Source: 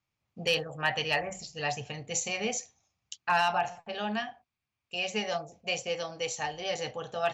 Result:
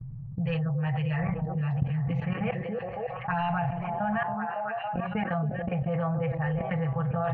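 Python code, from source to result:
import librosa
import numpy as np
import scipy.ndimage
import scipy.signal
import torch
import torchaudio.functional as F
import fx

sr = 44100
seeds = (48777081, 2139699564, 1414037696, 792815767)

p1 = scipy.signal.sosfilt(scipy.signal.butter(4, 1900.0, 'lowpass', fs=sr, output='sos'), x)
p2 = fx.low_shelf_res(p1, sr, hz=190.0, db=11.5, q=3.0)
p3 = fx.env_lowpass(p2, sr, base_hz=330.0, full_db=-23.0)
p4 = fx.peak_eq(p3, sr, hz=380.0, db=-9.5, octaves=1.5)
p5 = p4 + 0.96 * np.pad(p4, (int(6.1 * sr / 1000.0), 0))[:len(p4)]
p6 = fx.level_steps(p5, sr, step_db=19)
p7 = p6 + fx.echo_stepped(p6, sr, ms=278, hz=350.0, octaves=0.7, feedback_pct=70, wet_db=-5, dry=0)
y = fx.env_flatten(p7, sr, amount_pct=70)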